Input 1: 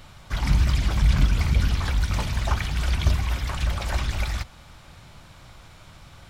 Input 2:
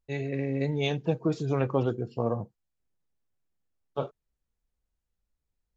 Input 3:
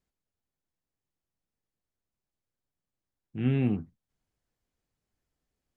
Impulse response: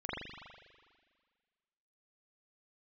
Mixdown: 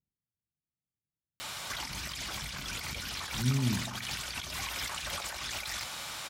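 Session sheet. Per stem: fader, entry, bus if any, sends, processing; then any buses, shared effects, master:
+2.0 dB, 1.40 s, no send, HPF 720 Hz 6 dB/oct; high shelf 3600 Hz +9 dB; negative-ratio compressor -40 dBFS, ratio -1
off
-1.5 dB, 0.00 s, send -14 dB, band-pass 130 Hz, Q 1.3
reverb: on, pre-delay 40 ms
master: dry

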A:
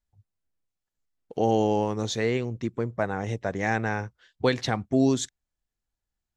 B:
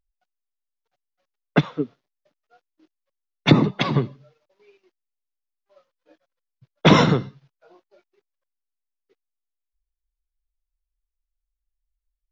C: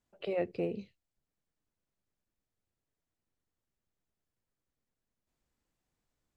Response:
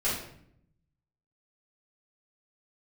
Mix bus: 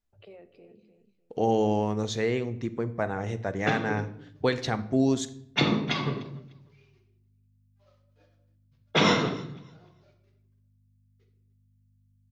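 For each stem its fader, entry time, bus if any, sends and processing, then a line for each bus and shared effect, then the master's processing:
-2.5 dB, 0.00 s, send -19.5 dB, no echo send, high shelf 6900 Hz -4.5 dB
-10.5 dB, 2.10 s, send -7.5 dB, echo send -18.5 dB, tilt +2 dB/oct; hum 50 Hz, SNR 30 dB
-8.5 dB, 0.00 s, send -22 dB, echo send -14.5 dB, limiter -32.5 dBFS, peak gain reduction 11 dB; auto duck -17 dB, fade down 1.00 s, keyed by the first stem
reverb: on, RT60 0.70 s, pre-delay 4 ms
echo: feedback echo 0.3 s, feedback 21%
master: dry

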